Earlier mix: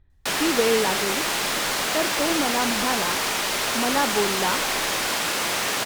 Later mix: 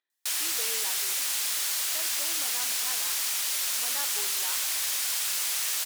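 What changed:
speech: add high-pass 280 Hz 24 dB/octave; master: add pre-emphasis filter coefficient 0.97

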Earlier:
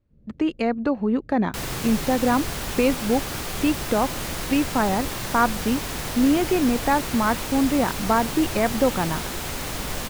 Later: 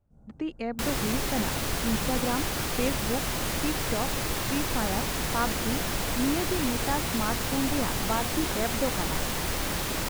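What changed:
speech -9.5 dB; first sound: remove steep low-pass 570 Hz 48 dB/octave; second sound: entry -0.75 s

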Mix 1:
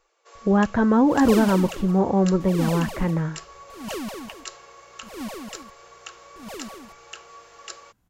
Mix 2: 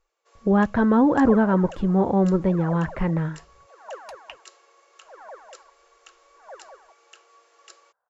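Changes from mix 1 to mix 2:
first sound -10.5 dB; second sound: add elliptic band-pass 510–1600 Hz, stop band 40 dB

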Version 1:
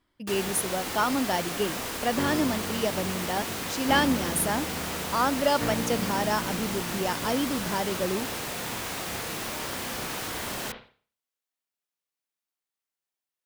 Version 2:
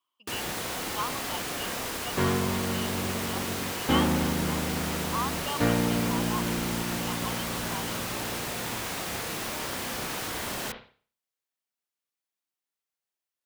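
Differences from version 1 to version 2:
speech: add two resonant band-passes 1.8 kHz, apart 1.4 oct; second sound +6.0 dB

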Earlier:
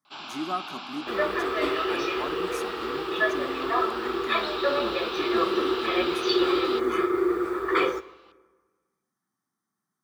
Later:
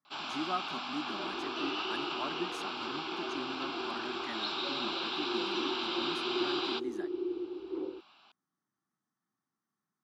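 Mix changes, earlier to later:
speech: add distance through air 52 m; second sound: add cascade formant filter u; reverb: off

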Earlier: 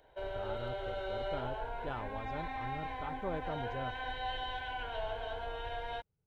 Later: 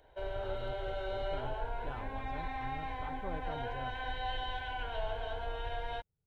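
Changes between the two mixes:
speech -5.5 dB; master: add bass shelf 110 Hz +6 dB

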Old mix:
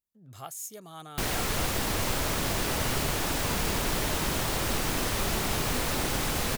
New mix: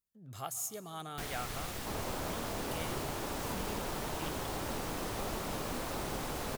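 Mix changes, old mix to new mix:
speech: send on; first sound -12.0 dB

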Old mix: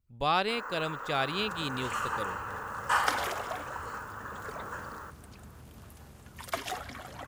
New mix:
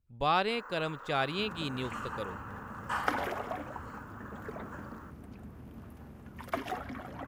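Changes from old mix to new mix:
first sound -7.0 dB; second sound: add graphic EQ 250/4000/8000 Hz +8/-6/-9 dB; master: add treble shelf 4.1 kHz -6.5 dB

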